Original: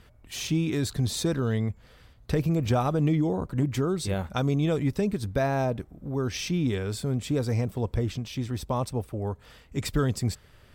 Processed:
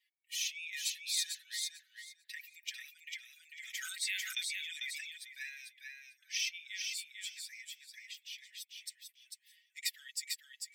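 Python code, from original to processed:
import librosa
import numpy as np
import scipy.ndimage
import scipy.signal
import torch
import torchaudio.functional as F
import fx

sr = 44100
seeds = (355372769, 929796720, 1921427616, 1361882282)

y = fx.bin_expand(x, sr, power=1.5)
y = scipy.signal.sosfilt(scipy.signal.butter(16, 1800.0, 'highpass', fs=sr, output='sos'), y)
y = y + 0.76 * np.pad(y, (int(5.3 * sr / 1000.0), 0))[:len(y)]
y = fx.echo_feedback(y, sr, ms=446, feedback_pct=17, wet_db=-4.5)
y = fx.sustainer(y, sr, db_per_s=27.0, at=(3.26, 5.12))
y = y * 10.0 ** (-1.0 / 20.0)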